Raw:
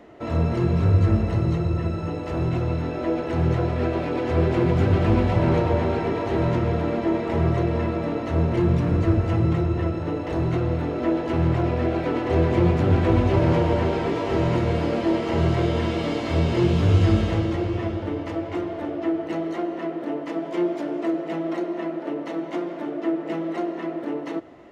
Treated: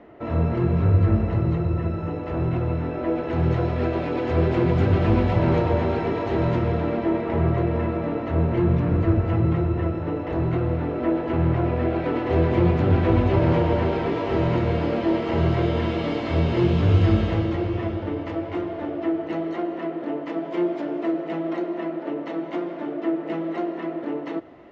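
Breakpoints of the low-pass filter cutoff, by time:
0:03.04 2,600 Hz
0:03.61 5,100 Hz
0:06.49 5,100 Hz
0:07.35 2,700 Hz
0:11.66 2,700 Hz
0:12.29 4,000 Hz

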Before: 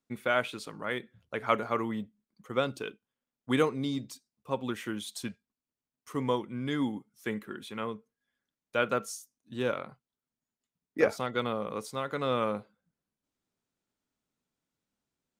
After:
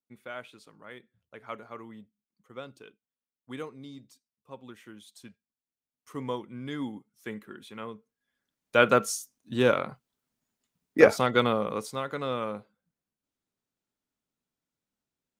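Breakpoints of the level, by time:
0:05.16 −12.5 dB
0:06.12 −4 dB
0:07.93 −4 dB
0:08.83 +8 dB
0:11.37 +8 dB
0:12.41 −3 dB

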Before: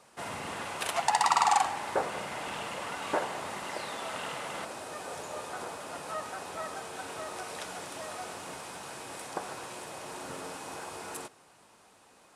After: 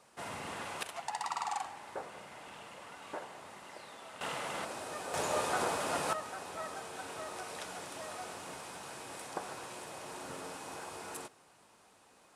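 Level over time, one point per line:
−4 dB
from 0:00.83 −12.5 dB
from 0:04.21 −1 dB
from 0:05.14 +6.5 dB
from 0:06.13 −3.5 dB

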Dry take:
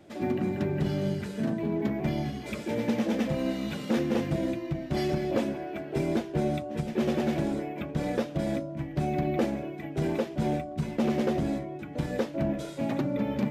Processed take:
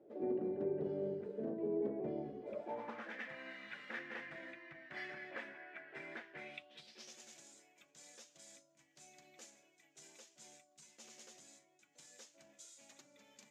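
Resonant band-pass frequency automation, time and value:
resonant band-pass, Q 4.2
0:02.42 450 Hz
0:03.14 1,800 Hz
0:06.32 1,800 Hz
0:07.17 6,900 Hz

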